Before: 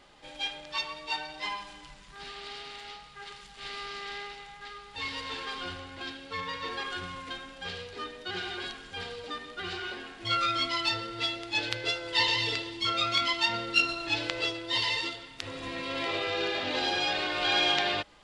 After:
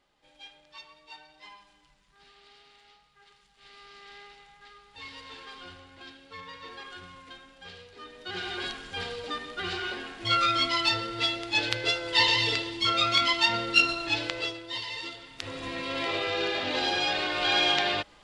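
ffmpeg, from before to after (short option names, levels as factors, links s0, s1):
-af "volume=4.73,afade=t=in:st=3.59:d=0.78:silence=0.473151,afade=t=in:st=8.01:d=0.66:silence=0.266073,afade=t=out:st=13.86:d=1.01:silence=0.251189,afade=t=in:st=14.87:d=0.64:silence=0.316228"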